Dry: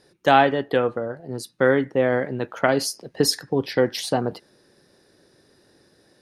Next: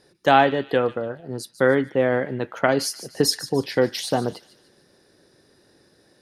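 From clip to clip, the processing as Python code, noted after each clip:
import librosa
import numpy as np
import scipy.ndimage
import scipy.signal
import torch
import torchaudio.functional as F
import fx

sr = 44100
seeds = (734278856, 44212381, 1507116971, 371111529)

y = fx.echo_wet_highpass(x, sr, ms=148, feedback_pct=42, hz=2700.0, wet_db=-12.5)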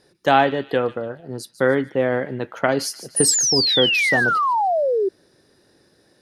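y = fx.spec_paint(x, sr, seeds[0], shape='fall', start_s=3.16, length_s=1.93, low_hz=370.0, high_hz=10000.0, level_db=-19.0)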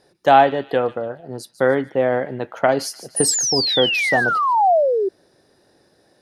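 y = fx.peak_eq(x, sr, hz=720.0, db=7.0, octaves=0.89)
y = y * 10.0 ** (-1.5 / 20.0)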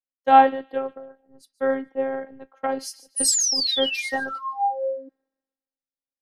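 y = fx.robotise(x, sr, hz=268.0)
y = fx.band_widen(y, sr, depth_pct=100)
y = y * 10.0 ** (-7.0 / 20.0)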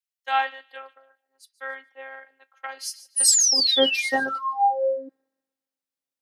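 y = fx.filter_sweep_highpass(x, sr, from_hz=1800.0, to_hz=140.0, start_s=3.07, end_s=3.8, q=0.78)
y = y * 10.0 ** (3.0 / 20.0)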